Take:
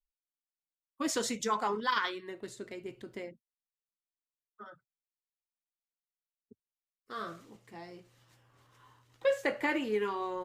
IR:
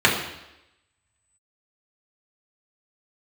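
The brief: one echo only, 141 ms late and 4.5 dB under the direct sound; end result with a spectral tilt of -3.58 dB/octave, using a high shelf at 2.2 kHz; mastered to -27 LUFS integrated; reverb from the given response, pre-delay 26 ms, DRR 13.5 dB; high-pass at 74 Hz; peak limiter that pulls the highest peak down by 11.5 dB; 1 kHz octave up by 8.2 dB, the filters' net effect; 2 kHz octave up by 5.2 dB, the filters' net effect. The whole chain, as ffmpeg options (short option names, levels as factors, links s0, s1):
-filter_complex "[0:a]highpass=74,equalizer=f=1000:t=o:g=9,equalizer=f=2000:t=o:g=6.5,highshelf=f=2200:g=-7,alimiter=limit=0.0841:level=0:latency=1,aecho=1:1:141:0.596,asplit=2[s0][s1];[1:a]atrim=start_sample=2205,adelay=26[s2];[s1][s2]afir=irnorm=-1:irlink=0,volume=0.0178[s3];[s0][s3]amix=inputs=2:normalize=0,volume=1.88"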